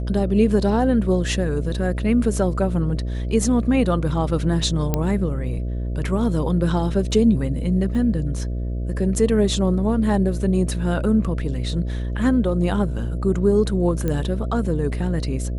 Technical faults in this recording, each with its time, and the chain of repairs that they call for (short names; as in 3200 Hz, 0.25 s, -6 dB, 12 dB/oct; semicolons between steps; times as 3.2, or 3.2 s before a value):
buzz 60 Hz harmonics 11 -25 dBFS
4.94 pop -7 dBFS
7.95 gap 2.8 ms
14.08 pop -12 dBFS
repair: de-click; de-hum 60 Hz, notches 11; interpolate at 7.95, 2.8 ms